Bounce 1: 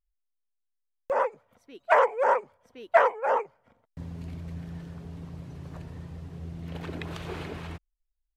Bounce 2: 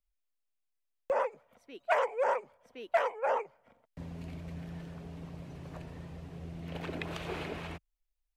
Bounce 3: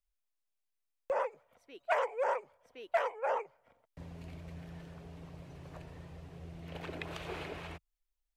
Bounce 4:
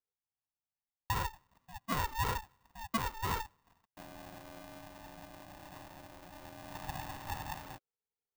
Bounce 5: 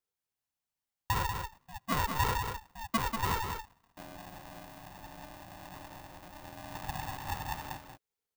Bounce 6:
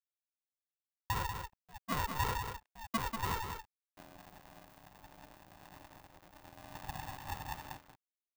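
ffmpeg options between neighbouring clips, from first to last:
ffmpeg -i in.wav -filter_complex "[0:a]equalizer=frequency=100:width_type=o:width=0.67:gain=-8,equalizer=frequency=630:width_type=o:width=0.67:gain=4,equalizer=frequency=2500:width_type=o:width=0.67:gain=4,acrossover=split=160|3000[link_01][link_02][link_03];[link_02]acompressor=threshold=-26dB:ratio=3[link_04];[link_01][link_04][link_03]amix=inputs=3:normalize=0,volume=-2dB" out.wav
ffmpeg -i in.wav -af "equalizer=frequency=220:width_type=o:width=0.66:gain=-7.5,volume=-2.5dB" out.wav
ffmpeg -i in.wav -af "bandpass=frequency=340:width_type=q:width=2:csg=0,aeval=exprs='val(0)*sgn(sin(2*PI*450*n/s))':channel_layout=same,volume=6.5dB" out.wav
ffmpeg -i in.wav -af "aecho=1:1:190:0.501,volume=3dB" out.wav
ffmpeg -i in.wav -af "aeval=exprs='sgn(val(0))*max(abs(val(0))-0.00224,0)':channel_layout=same,volume=-4dB" out.wav

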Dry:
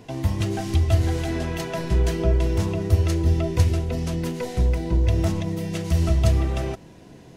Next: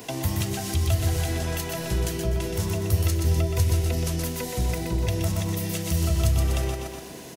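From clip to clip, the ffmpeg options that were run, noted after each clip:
ffmpeg -i in.wav -filter_complex "[0:a]aemphasis=mode=production:type=bsi,aecho=1:1:123|246|369|492|615:0.501|0.19|0.0724|0.0275|0.0105,acrossover=split=170[link_01][link_02];[link_02]acompressor=threshold=-36dB:ratio=10[link_03];[link_01][link_03]amix=inputs=2:normalize=0,volume=7dB" out.wav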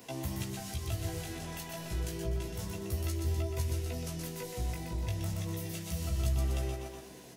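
ffmpeg -i in.wav -af "flanger=delay=15:depth=4.3:speed=0.3,volume=-7.5dB" out.wav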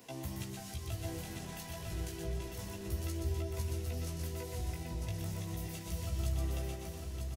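ffmpeg -i in.wav -af "aecho=1:1:949:0.531,volume=-4.5dB" out.wav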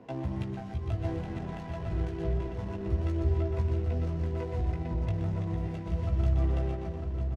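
ffmpeg -i in.wav -af "adynamicsmooth=sensitivity=8:basefreq=970,volume=8.5dB" out.wav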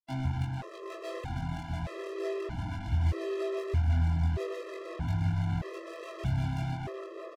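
ffmpeg -i in.wav -filter_complex "[0:a]acrusher=bits=5:mix=0:aa=0.5,asplit=2[link_01][link_02];[link_02]adelay=23,volume=-2dB[link_03];[link_01][link_03]amix=inputs=2:normalize=0,afftfilt=real='re*gt(sin(2*PI*0.8*pts/sr)*(1-2*mod(floor(b*sr/1024/340),2)),0)':imag='im*gt(sin(2*PI*0.8*pts/sr)*(1-2*mod(floor(b*sr/1024/340),2)),0)':win_size=1024:overlap=0.75" out.wav

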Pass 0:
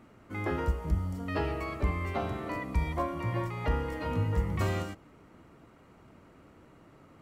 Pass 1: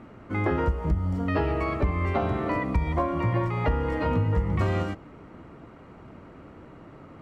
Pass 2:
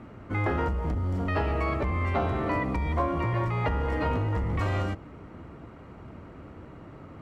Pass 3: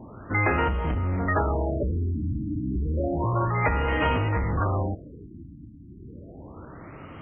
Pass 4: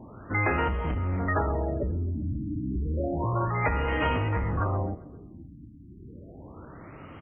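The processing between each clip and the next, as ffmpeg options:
ffmpeg -i in.wav -af "aemphasis=mode=reproduction:type=75fm,acompressor=threshold=-30dB:ratio=5,volume=9dB" out.wav
ffmpeg -i in.wav -filter_complex "[0:a]equalizer=frequency=74:width_type=o:width=1.4:gain=6,acrossover=split=600[link_01][link_02];[link_01]asoftclip=type=hard:threshold=-26.5dB[link_03];[link_03][link_02]amix=inputs=2:normalize=0" out.wav
ffmpeg -i in.wav -af "crystalizer=i=7:c=0,afftfilt=real='re*lt(b*sr/1024,320*pow(3300/320,0.5+0.5*sin(2*PI*0.31*pts/sr)))':imag='im*lt(b*sr/1024,320*pow(3300/320,0.5+0.5*sin(2*PI*0.31*pts/sr)))':win_size=1024:overlap=0.75,volume=2dB" out.wav
ffmpeg -i in.wav -af "aecho=1:1:133|266|399|532:0.0891|0.0508|0.029|0.0165,volume=-2.5dB" out.wav

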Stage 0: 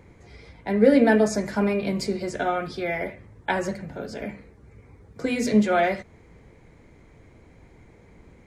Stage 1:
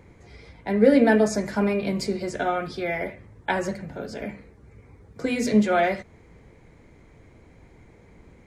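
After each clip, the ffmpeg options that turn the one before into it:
ffmpeg -i in.wav -af anull out.wav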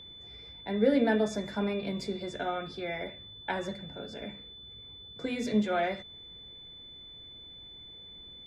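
ffmpeg -i in.wav -af "aeval=exprs='val(0)+0.0141*sin(2*PI*3500*n/s)':channel_layout=same,highshelf=frequency=7900:gain=-9,volume=-8dB" out.wav

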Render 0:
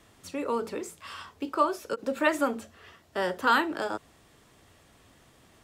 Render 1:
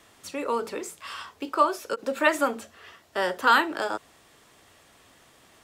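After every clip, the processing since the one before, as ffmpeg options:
ffmpeg -i in.wav -af "lowshelf=frequency=290:gain=-10.5,volume=4.5dB" out.wav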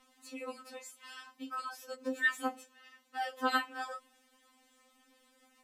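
ffmpeg -i in.wav -af "aeval=exprs='val(0)+0.00141*(sin(2*PI*60*n/s)+sin(2*PI*2*60*n/s)/2+sin(2*PI*3*60*n/s)/3+sin(2*PI*4*60*n/s)/4+sin(2*PI*5*60*n/s)/5)':channel_layout=same,afftfilt=real='re*3.46*eq(mod(b,12),0)':imag='im*3.46*eq(mod(b,12),0)':win_size=2048:overlap=0.75,volume=-8dB" out.wav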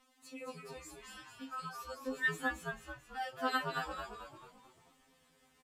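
ffmpeg -i in.wav -filter_complex "[0:a]asplit=7[link_01][link_02][link_03][link_04][link_05][link_06][link_07];[link_02]adelay=220,afreqshift=-100,volume=-5dB[link_08];[link_03]adelay=440,afreqshift=-200,volume=-11.6dB[link_09];[link_04]adelay=660,afreqshift=-300,volume=-18.1dB[link_10];[link_05]adelay=880,afreqshift=-400,volume=-24.7dB[link_11];[link_06]adelay=1100,afreqshift=-500,volume=-31.2dB[link_12];[link_07]adelay=1320,afreqshift=-600,volume=-37.8dB[link_13];[link_01][link_08][link_09][link_10][link_11][link_12][link_13]amix=inputs=7:normalize=0,volume=-3.5dB" out.wav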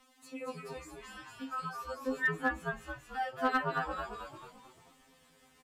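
ffmpeg -i in.wav -filter_complex "[0:a]acrossover=split=280|2200[link_01][link_02][link_03];[link_02]aeval=exprs='clip(val(0),-1,0.0376)':channel_layout=same[link_04];[link_03]acompressor=threshold=-60dB:ratio=6[link_05];[link_01][link_04][link_05]amix=inputs=3:normalize=0,volume=5dB" out.wav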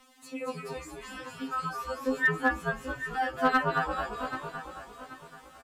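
ffmpeg -i in.wav -af "aecho=1:1:783|1566|2349:0.266|0.0798|0.0239,volume=5.5dB" out.wav

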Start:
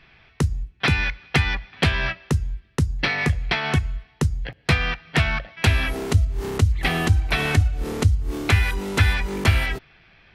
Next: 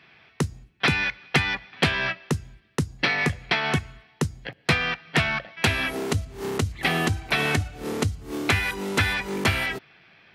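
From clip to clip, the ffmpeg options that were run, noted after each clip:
ffmpeg -i in.wav -af "highpass=150" out.wav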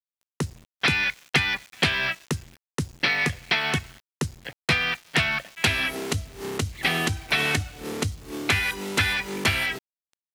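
ffmpeg -i in.wav -af "aeval=exprs='val(0)*gte(abs(val(0)),0.00708)':channel_layout=same,adynamicequalizer=threshold=0.0141:dfrequency=1700:dqfactor=0.7:tfrequency=1700:tqfactor=0.7:attack=5:release=100:ratio=0.375:range=3:mode=boostabove:tftype=highshelf,volume=-3dB" out.wav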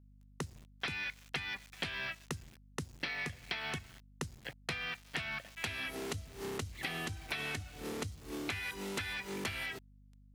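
ffmpeg -i in.wav -af "acompressor=threshold=-29dB:ratio=6,aeval=exprs='val(0)+0.00251*(sin(2*PI*50*n/s)+sin(2*PI*2*50*n/s)/2+sin(2*PI*3*50*n/s)/3+sin(2*PI*4*50*n/s)/4+sin(2*PI*5*50*n/s)/5)':channel_layout=same,volume=-7dB" out.wav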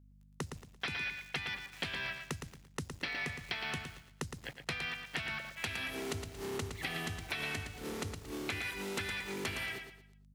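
ffmpeg -i in.wav -af "aecho=1:1:114|228|342|456:0.447|0.143|0.0457|0.0146" out.wav

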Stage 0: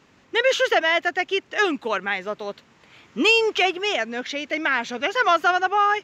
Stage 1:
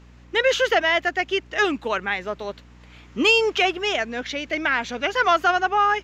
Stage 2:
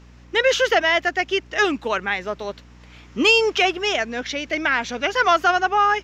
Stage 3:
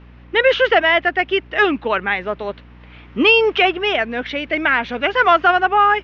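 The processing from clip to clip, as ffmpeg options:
ffmpeg -i in.wav -af "aeval=exprs='val(0)+0.00447*(sin(2*PI*60*n/s)+sin(2*PI*2*60*n/s)/2+sin(2*PI*3*60*n/s)/3+sin(2*PI*4*60*n/s)/4+sin(2*PI*5*60*n/s)/5)':channel_layout=same" out.wav
ffmpeg -i in.wav -af "equalizer=frequency=5500:width=4:gain=5,volume=1.5dB" out.wav
ffmpeg -i in.wav -af "lowpass=frequency=3300:width=0.5412,lowpass=frequency=3300:width=1.3066,volume=4dB" out.wav

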